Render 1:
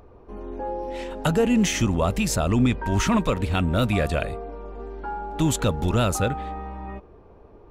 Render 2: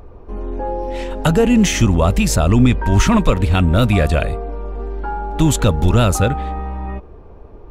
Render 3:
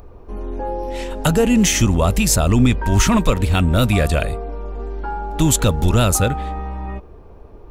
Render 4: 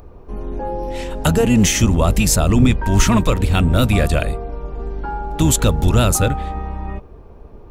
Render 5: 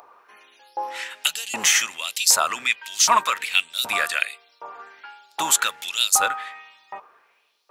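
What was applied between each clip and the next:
bass shelf 75 Hz +10 dB; trim +6 dB
treble shelf 5.4 kHz +10 dB; trim -2 dB
octave divider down 1 oct, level -4 dB
LFO high-pass saw up 1.3 Hz 860–4900 Hz

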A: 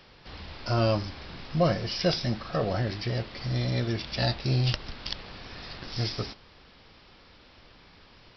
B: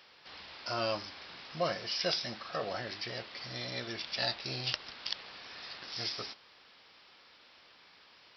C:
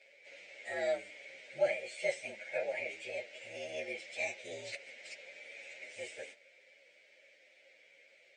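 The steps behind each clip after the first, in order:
high-pass 1 kHz 6 dB/octave; trim -1.5 dB
frequency axis rescaled in octaves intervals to 116%; two resonant band-passes 1.1 kHz, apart 2 oct; trim +12.5 dB

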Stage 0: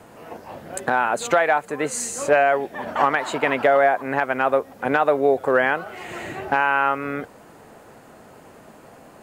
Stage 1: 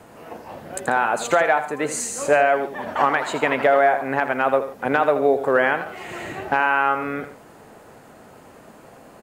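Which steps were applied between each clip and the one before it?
multi-tap echo 82/140 ms -11/-18 dB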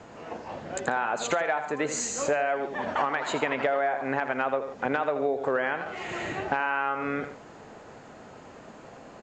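elliptic low-pass 7.2 kHz, stop band 40 dB; compression 4:1, threshold -24 dBFS, peak gain reduction 10 dB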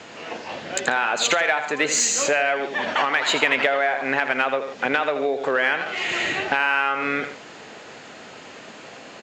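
frequency weighting D; in parallel at -11.5 dB: saturation -23.5 dBFS, distortion -9 dB; on the sum: trim +2.5 dB

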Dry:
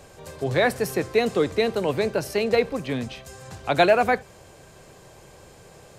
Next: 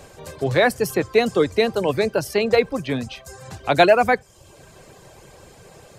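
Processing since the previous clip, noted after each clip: reverb removal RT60 0.66 s; trim +4 dB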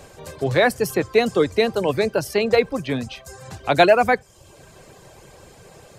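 no audible change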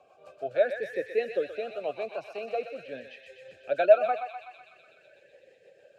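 rotary cabinet horn 6.3 Hz; thinning echo 125 ms, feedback 82%, high-pass 1.1 kHz, level -5.5 dB; talking filter a-e 0.45 Hz

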